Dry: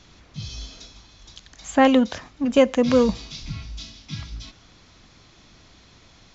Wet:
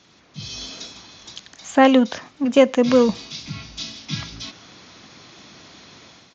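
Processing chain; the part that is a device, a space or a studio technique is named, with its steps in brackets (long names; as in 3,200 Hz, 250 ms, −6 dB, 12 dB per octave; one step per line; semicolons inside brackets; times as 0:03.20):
Bluetooth headset (high-pass filter 160 Hz 12 dB per octave; automatic gain control gain up to 10 dB; downsampling to 16,000 Hz; level −1.5 dB; SBC 64 kbit/s 16,000 Hz)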